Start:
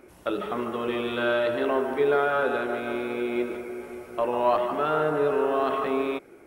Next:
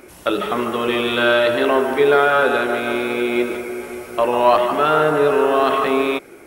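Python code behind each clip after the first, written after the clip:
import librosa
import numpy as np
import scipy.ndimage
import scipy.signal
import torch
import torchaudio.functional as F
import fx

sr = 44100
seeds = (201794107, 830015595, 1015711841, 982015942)

y = fx.high_shelf(x, sr, hz=2000.0, db=8.0)
y = y * 10.0 ** (7.5 / 20.0)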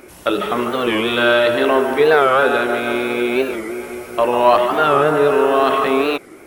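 y = fx.record_warp(x, sr, rpm=45.0, depth_cents=160.0)
y = y * 10.0 ** (1.5 / 20.0)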